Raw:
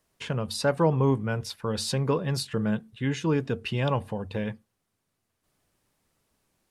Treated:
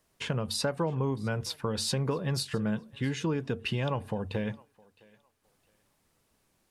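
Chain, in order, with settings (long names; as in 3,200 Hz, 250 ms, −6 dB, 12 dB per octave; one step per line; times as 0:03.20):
downward compressor 6 to 1, threshold −28 dBFS, peak gain reduction 11 dB
on a send: feedback echo with a high-pass in the loop 662 ms, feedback 26%, high-pass 420 Hz, level −23 dB
on the sum: level +1.5 dB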